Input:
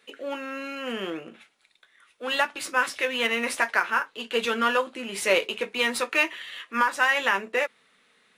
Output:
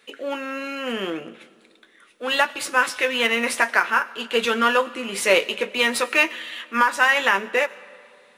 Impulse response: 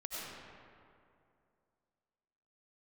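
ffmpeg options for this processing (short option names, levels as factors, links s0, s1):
-filter_complex "[0:a]asplit=2[s0][s1];[1:a]atrim=start_sample=2205,highshelf=f=3600:g=9[s2];[s1][s2]afir=irnorm=-1:irlink=0,volume=0.0891[s3];[s0][s3]amix=inputs=2:normalize=0,volume=1.58"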